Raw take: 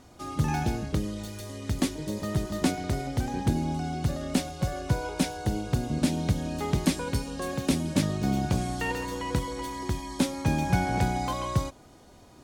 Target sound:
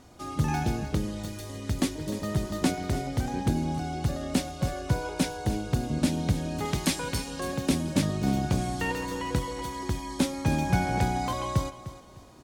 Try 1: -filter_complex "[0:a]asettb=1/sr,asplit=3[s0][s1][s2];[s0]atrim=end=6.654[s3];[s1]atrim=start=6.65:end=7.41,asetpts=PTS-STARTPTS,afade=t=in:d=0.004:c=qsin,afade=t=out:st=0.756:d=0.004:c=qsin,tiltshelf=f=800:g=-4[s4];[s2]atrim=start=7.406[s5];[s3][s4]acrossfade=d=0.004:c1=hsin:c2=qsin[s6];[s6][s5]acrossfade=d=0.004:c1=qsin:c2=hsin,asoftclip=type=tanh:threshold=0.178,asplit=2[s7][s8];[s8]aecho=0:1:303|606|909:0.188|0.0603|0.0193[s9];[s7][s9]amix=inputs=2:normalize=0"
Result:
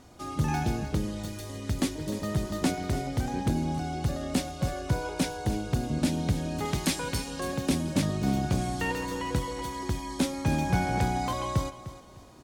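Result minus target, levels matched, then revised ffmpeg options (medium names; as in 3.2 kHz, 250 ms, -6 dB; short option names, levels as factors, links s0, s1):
saturation: distortion +20 dB
-filter_complex "[0:a]asettb=1/sr,asplit=3[s0][s1][s2];[s0]atrim=end=6.654[s3];[s1]atrim=start=6.65:end=7.41,asetpts=PTS-STARTPTS,afade=t=in:d=0.004:c=qsin,afade=t=out:st=0.756:d=0.004:c=qsin,tiltshelf=f=800:g=-4[s4];[s2]atrim=start=7.406[s5];[s3][s4]acrossfade=d=0.004:c1=hsin:c2=qsin[s6];[s6][s5]acrossfade=d=0.004:c1=qsin:c2=hsin,asoftclip=type=tanh:threshold=0.668,asplit=2[s7][s8];[s8]aecho=0:1:303|606|909:0.188|0.0603|0.0193[s9];[s7][s9]amix=inputs=2:normalize=0"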